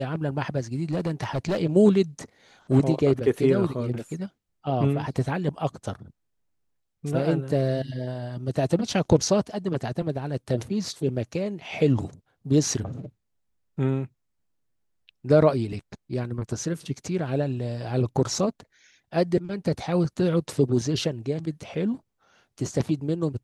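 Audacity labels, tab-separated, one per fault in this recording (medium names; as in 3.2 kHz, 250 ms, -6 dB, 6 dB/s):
0.910000	1.590000	clipped -21.5 dBFS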